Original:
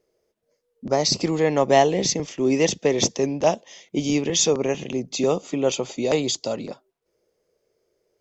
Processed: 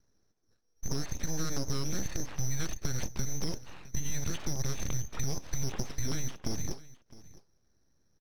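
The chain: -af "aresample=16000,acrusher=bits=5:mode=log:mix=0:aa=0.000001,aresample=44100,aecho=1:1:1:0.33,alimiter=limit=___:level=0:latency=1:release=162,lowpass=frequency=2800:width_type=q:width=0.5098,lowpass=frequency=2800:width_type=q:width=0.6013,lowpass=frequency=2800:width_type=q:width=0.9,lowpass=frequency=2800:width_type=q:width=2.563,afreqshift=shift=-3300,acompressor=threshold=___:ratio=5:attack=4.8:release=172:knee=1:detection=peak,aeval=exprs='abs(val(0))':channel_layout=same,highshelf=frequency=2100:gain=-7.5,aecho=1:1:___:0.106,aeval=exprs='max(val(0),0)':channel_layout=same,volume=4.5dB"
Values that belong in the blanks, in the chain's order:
-13dB, -29dB, 661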